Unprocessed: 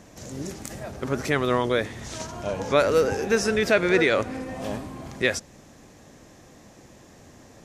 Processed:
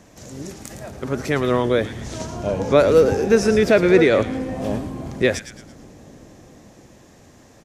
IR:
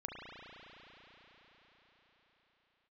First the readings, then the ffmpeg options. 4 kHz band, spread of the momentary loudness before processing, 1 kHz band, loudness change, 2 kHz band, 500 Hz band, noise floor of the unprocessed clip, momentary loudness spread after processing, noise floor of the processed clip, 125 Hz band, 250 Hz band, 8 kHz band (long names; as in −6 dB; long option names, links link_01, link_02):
+0.5 dB, 15 LU, +2.0 dB, +6.0 dB, +0.5 dB, +6.5 dB, −51 dBFS, 20 LU, −50 dBFS, +6.5 dB, +7.0 dB, +0.5 dB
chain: -filter_complex "[0:a]acrossover=split=670|1500[link_01][link_02][link_03];[link_01]dynaudnorm=framelen=230:gausssize=13:maxgain=8.5dB[link_04];[link_03]asplit=6[link_05][link_06][link_07][link_08][link_09][link_10];[link_06]adelay=111,afreqshift=-92,volume=-9dB[link_11];[link_07]adelay=222,afreqshift=-184,volume=-16.7dB[link_12];[link_08]adelay=333,afreqshift=-276,volume=-24.5dB[link_13];[link_09]adelay=444,afreqshift=-368,volume=-32.2dB[link_14];[link_10]adelay=555,afreqshift=-460,volume=-40dB[link_15];[link_05][link_11][link_12][link_13][link_14][link_15]amix=inputs=6:normalize=0[link_16];[link_04][link_02][link_16]amix=inputs=3:normalize=0"